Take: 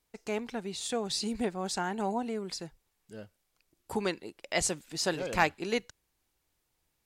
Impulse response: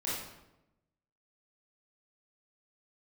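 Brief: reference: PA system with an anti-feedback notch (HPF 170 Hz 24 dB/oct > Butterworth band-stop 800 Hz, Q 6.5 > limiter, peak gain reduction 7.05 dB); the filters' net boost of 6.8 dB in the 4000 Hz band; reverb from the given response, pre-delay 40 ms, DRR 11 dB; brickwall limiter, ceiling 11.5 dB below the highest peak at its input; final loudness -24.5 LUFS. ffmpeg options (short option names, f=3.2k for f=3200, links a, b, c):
-filter_complex "[0:a]equalizer=f=4k:t=o:g=8.5,alimiter=limit=-19.5dB:level=0:latency=1,asplit=2[a][b];[1:a]atrim=start_sample=2205,adelay=40[c];[b][c]afir=irnorm=-1:irlink=0,volume=-16dB[d];[a][d]amix=inputs=2:normalize=0,highpass=f=170:w=0.5412,highpass=f=170:w=1.3066,asuperstop=centerf=800:order=8:qfactor=6.5,volume=10dB,alimiter=limit=-13dB:level=0:latency=1"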